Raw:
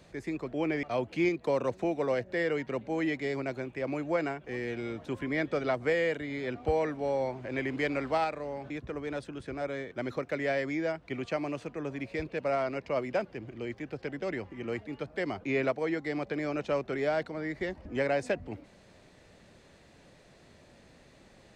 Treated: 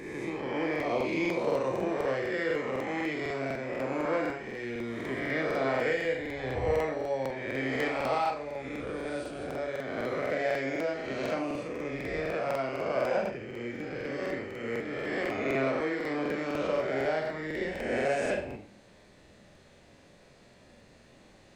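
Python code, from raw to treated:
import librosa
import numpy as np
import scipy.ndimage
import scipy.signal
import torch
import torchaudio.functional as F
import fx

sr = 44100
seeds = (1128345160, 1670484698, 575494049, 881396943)

y = fx.spec_swells(x, sr, rise_s=1.59)
y = fx.rev_schroeder(y, sr, rt60_s=0.45, comb_ms=30, drr_db=2.0)
y = fx.buffer_crackle(y, sr, first_s=0.71, period_s=0.25, block=2048, kind='repeat')
y = y * 10.0 ** (-4.5 / 20.0)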